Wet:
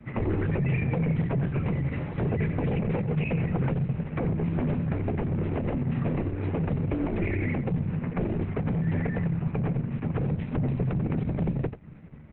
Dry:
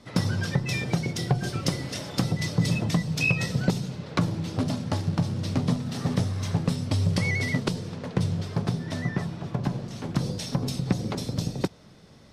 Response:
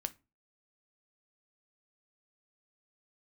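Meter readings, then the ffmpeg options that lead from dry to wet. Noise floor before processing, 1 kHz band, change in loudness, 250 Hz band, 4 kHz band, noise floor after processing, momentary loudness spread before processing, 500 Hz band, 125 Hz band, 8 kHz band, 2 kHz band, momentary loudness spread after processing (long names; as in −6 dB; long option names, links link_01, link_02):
−51 dBFS, −2.0 dB, −0.5 dB, +0.5 dB, below −15 dB, −43 dBFS, 6 LU, +2.0 dB, 0.0 dB, below −40 dB, −6.5 dB, 3 LU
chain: -filter_complex "[0:a]bass=frequency=250:gain=10,treble=frequency=4000:gain=-8,bandreject=frequency=680:width=12,asplit=2[link_01][link_02];[link_02]adelay=13,volume=-8dB[link_03];[link_01][link_03]amix=inputs=2:normalize=0,adynamicsmooth=sensitivity=2:basefreq=4200,aeval=exprs='0.126*(abs(mod(val(0)/0.126+3,4)-2)-1)':channel_layout=same,acrossover=split=170|360|730|2200[link_04][link_05][link_06][link_07][link_08];[link_04]acompressor=threshold=-27dB:ratio=4[link_09];[link_05]acompressor=threshold=-30dB:ratio=4[link_10];[link_06]acompressor=threshold=-34dB:ratio=4[link_11];[link_07]acompressor=threshold=-44dB:ratio=4[link_12];[link_08]acompressor=threshold=-48dB:ratio=4[link_13];[link_09][link_10][link_11][link_12][link_13]amix=inputs=5:normalize=0,highshelf=frequency=3100:width_type=q:width=3:gain=-9,aecho=1:1:90:0.266" -ar 48000 -c:a libopus -b:a 8k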